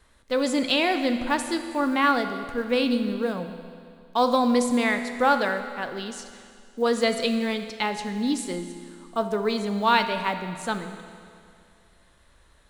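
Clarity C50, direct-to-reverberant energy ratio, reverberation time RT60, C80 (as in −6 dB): 8.5 dB, 7.5 dB, 2.3 s, 9.5 dB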